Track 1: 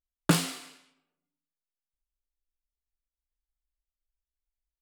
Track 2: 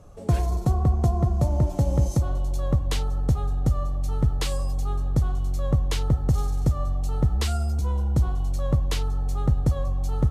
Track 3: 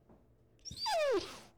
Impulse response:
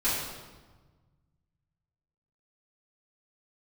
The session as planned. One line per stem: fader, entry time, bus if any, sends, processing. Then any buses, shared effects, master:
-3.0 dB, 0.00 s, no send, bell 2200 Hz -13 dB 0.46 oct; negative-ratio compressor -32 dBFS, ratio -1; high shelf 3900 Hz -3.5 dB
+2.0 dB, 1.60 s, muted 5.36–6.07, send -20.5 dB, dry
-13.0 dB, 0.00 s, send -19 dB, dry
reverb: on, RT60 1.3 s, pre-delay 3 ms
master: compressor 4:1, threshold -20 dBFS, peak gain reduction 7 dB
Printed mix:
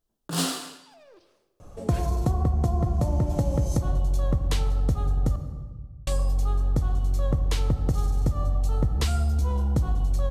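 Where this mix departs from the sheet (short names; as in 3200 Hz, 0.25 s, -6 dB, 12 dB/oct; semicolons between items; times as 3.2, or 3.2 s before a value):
stem 1 -3.0 dB -> +6.5 dB; stem 3 -13.0 dB -> -22.0 dB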